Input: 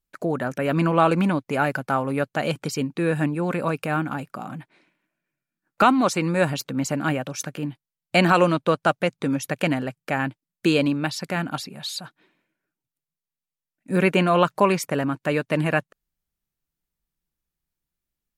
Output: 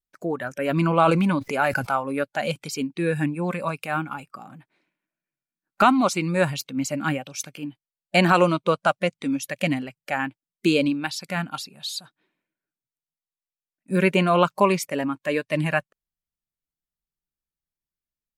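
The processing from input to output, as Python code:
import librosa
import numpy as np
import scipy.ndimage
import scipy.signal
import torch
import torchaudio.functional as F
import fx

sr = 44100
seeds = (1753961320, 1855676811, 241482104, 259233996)

y = fx.noise_reduce_blind(x, sr, reduce_db=10)
y = fx.sustainer(y, sr, db_per_s=32.0, at=(0.73, 1.96))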